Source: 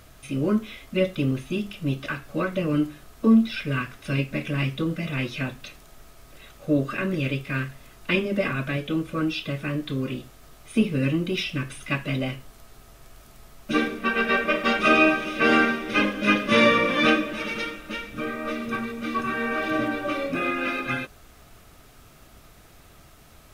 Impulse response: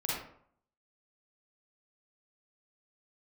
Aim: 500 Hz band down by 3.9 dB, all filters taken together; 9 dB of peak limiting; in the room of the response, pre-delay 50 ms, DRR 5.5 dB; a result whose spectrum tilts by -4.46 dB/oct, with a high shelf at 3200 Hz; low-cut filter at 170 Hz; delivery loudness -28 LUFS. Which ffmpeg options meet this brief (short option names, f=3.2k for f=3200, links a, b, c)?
-filter_complex "[0:a]highpass=170,equalizer=f=500:t=o:g=-5,highshelf=f=3.2k:g=7,alimiter=limit=-14dB:level=0:latency=1,asplit=2[a][b];[1:a]atrim=start_sample=2205,adelay=50[c];[b][c]afir=irnorm=-1:irlink=0,volume=-11dB[d];[a][d]amix=inputs=2:normalize=0,volume=-2dB"